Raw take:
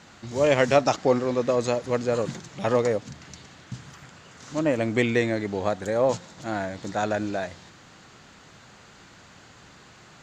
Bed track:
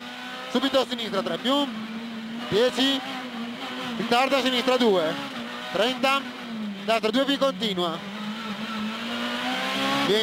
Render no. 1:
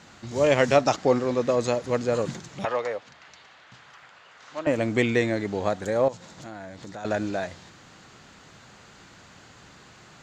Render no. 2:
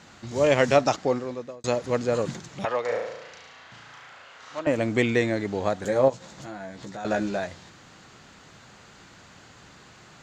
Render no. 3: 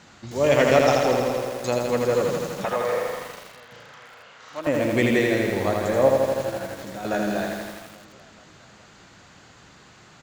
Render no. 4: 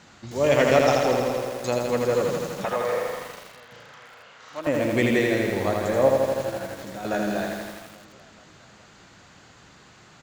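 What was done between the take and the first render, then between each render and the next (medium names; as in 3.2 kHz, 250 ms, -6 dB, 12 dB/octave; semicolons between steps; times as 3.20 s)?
2.65–4.67 s: three-band isolator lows -19 dB, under 530 Hz, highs -15 dB, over 4.2 kHz; 6.08–7.05 s: compression 3:1, threshold -38 dBFS
0.83–1.64 s: fade out; 2.85–4.60 s: flutter echo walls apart 6 m, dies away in 0.87 s; 5.83–7.38 s: doubling 15 ms -5 dB
feedback delay 419 ms, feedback 59%, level -20.5 dB; bit-crushed delay 82 ms, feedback 80%, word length 7-bit, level -3 dB
trim -1 dB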